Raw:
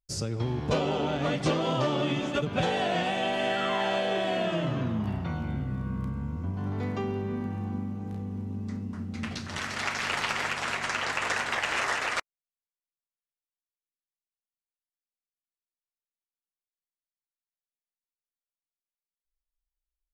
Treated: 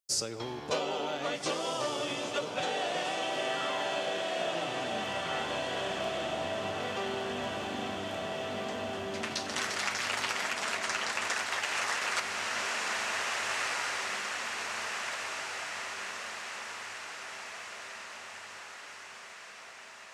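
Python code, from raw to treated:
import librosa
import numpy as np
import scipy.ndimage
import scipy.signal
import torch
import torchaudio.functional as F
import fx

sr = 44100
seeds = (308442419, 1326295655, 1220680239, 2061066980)

y = scipy.signal.sosfilt(scipy.signal.butter(2, 60.0, 'highpass', fs=sr, output='sos'), x)
y = fx.low_shelf(y, sr, hz=260.0, db=-5.0)
y = fx.echo_diffused(y, sr, ms=1696, feedback_pct=59, wet_db=-4.0)
y = fx.rider(y, sr, range_db=3, speed_s=0.5)
y = fx.bass_treble(y, sr, bass_db=-14, treble_db=6)
y = y * 10.0 ** (-2.0 / 20.0)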